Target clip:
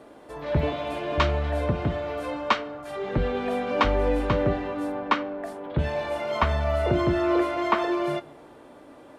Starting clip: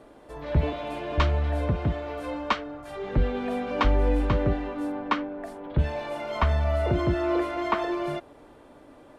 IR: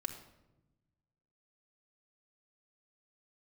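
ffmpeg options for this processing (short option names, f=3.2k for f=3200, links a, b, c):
-filter_complex "[0:a]highpass=f=130:p=1,asplit=2[a][b];[1:a]atrim=start_sample=2205,adelay=22[c];[b][c]afir=irnorm=-1:irlink=0,volume=-13.5dB[d];[a][d]amix=inputs=2:normalize=0,volume=3dB"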